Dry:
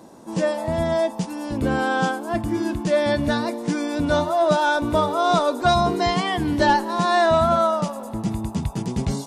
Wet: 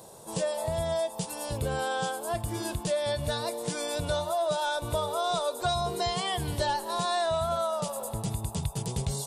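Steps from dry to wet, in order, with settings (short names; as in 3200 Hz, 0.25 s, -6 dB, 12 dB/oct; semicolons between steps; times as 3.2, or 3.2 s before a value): EQ curve 140 Hz 0 dB, 280 Hz -19 dB, 430 Hz 0 dB, 2000 Hz -6 dB, 3600 Hz +4 dB, 6000 Hz +1 dB, 8500 Hz +10 dB; compressor 3:1, threshold -28 dBFS, peak gain reduction 9.5 dB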